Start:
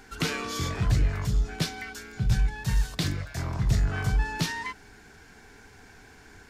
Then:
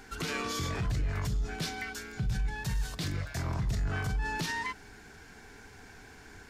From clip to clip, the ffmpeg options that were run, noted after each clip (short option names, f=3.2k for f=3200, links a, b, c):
-af "alimiter=level_in=0.5dB:limit=-24dB:level=0:latency=1:release=38,volume=-0.5dB"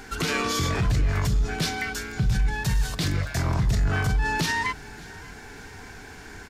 -af "aecho=1:1:585|1170|1755|2340:0.0708|0.0389|0.0214|0.0118,volume=8.5dB"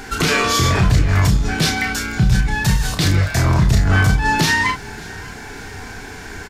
-filter_complex "[0:a]asplit=2[a][b];[b]adelay=32,volume=-5.5dB[c];[a][c]amix=inputs=2:normalize=0,volume=8.5dB"